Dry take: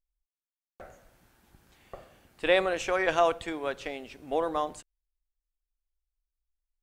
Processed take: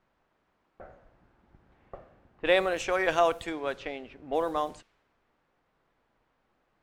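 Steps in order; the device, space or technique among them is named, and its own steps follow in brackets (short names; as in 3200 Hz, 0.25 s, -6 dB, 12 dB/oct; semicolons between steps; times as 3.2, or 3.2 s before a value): 1.97–2.47 air absorption 200 m; cassette deck with a dynamic noise filter (white noise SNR 29 dB; low-pass opened by the level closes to 1200 Hz, open at -25 dBFS)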